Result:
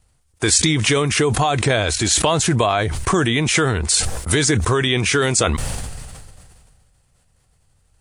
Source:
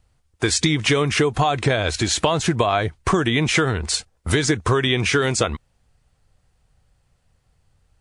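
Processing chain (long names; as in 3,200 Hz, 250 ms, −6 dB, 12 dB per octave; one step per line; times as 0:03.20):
parametric band 9,600 Hz +9.5 dB 1.1 octaves
level that may fall only so fast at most 28 dB per second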